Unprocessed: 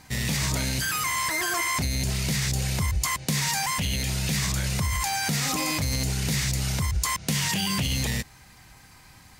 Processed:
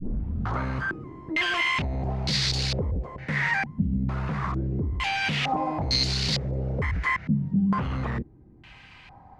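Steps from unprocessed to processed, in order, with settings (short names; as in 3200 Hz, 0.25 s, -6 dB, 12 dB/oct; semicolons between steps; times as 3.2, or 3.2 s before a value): tape start at the beginning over 0.59 s; wavefolder -22.5 dBFS; stepped low-pass 2.2 Hz 220–4400 Hz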